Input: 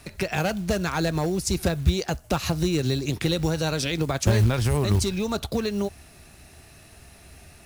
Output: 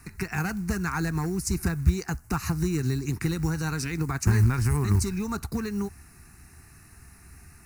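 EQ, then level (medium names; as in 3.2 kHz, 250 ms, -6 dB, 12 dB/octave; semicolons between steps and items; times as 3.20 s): static phaser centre 1.4 kHz, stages 4; 0.0 dB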